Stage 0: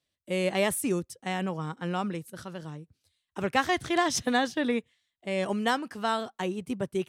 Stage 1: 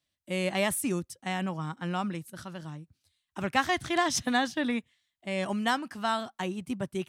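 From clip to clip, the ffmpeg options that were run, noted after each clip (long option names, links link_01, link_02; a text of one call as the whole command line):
ffmpeg -i in.wav -af "equalizer=frequency=450:width=3.4:gain=-10.5" out.wav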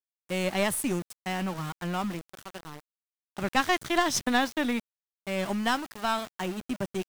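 ffmpeg -i in.wav -af "aeval=exprs='val(0)*gte(abs(val(0)),0.0141)':channel_layout=same,aeval=exprs='(tanh(5.01*val(0)+0.75)-tanh(0.75))/5.01':channel_layout=same,volume=5.5dB" out.wav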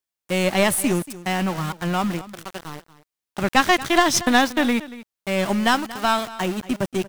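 ffmpeg -i in.wav -af "aecho=1:1:233:0.141,volume=8dB" out.wav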